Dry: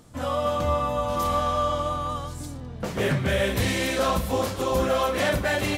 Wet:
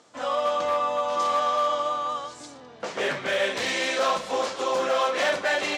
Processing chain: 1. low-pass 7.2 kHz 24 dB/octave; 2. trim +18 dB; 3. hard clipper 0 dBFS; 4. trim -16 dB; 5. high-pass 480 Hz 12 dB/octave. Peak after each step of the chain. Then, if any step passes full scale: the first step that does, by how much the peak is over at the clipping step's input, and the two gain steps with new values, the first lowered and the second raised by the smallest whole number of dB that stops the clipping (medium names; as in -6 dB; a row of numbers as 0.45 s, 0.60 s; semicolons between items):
-14.0 dBFS, +4.0 dBFS, 0.0 dBFS, -16.0 dBFS, -12.5 dBFS; step 2, 4.0 dB; step 2 +14 dB, step 4 -12 dB